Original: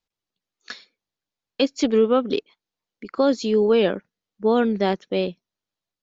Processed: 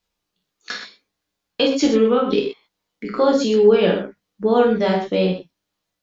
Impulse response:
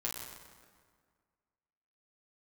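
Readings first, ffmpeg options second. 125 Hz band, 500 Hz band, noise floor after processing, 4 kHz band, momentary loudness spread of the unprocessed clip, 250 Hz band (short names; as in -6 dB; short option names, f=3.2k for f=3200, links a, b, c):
+6.0 dB, +4.0 dB, -80 dBFS, +4.5 dB, 17 LU, +3.0 dB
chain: -filter_complex "[0:a]acompressor=threshold=-33dB:ratio=1.5[a];[1:a]atrim=start_sample=2205,afade=t=out:st=0.19:d=0.01,atrim=end_sample=8820[b];[a][b]afir=irnorm=-1:irlink=0,volume=8.5dB"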